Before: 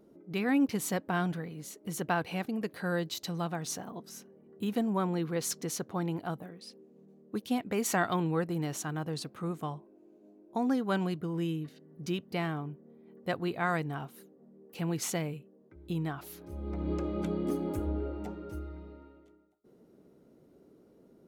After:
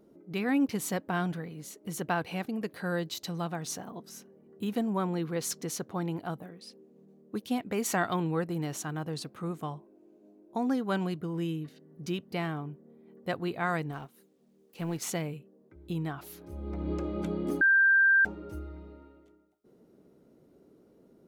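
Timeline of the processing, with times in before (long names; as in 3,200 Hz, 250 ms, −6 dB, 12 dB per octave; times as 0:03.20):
0:13.91–0:15.07: mu-law and A-law mismatch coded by A
0:17.61–0:18.25: beep over 1,580 Hz −18.5 dBFS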